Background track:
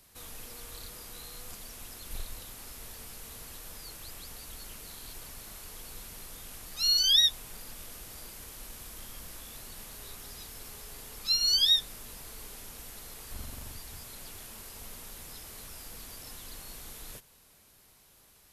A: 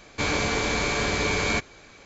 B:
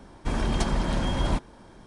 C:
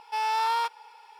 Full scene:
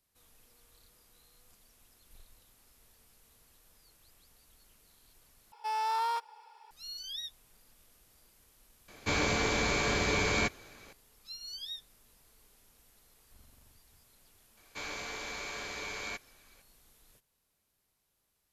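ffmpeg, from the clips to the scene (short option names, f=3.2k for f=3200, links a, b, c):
-filter_complex "[1:a]asplit=2[a][b];[0:a]volume=-18.5dB[c];[3:a]equalizer=f=2.6k:t=o:w=1.6:g=-5.5[d];[b]equalizer=f=110:w=0.31:g=-12.5[e];[c]asplit=2[f][g];[f]atrim=end=5.524[h];[d]atrim=end=1.19,asetpts=PTS-STARTPTS,volume=-4dB[i];[g]atrim=start=6.706[j];[a]atrim=end=2.05,asetpts=PTS-STARTPTS,volume=-4.5dB,afade=t=in:d=0.004:c=hsin,afade=t=out:st=2.046:d=0.004:c=hsin,adelay=8880[k];[e]atrim=end=2.05,asetpts=PTS-STARTPTS,volume=-13dB,afade=t=in:d=0.004:c=hsin,afade=t=out:st=2.046:d=0.004:c=hsin,adelay=14570[l];[h][i]acrossfade=d=0.004:c1=hsin:c2=hsin[m];[m][j]acrossfade=d=0.004:c1=hsin:c2=hsin[n];[n][k][l]amix=inputs=3:normalize=0"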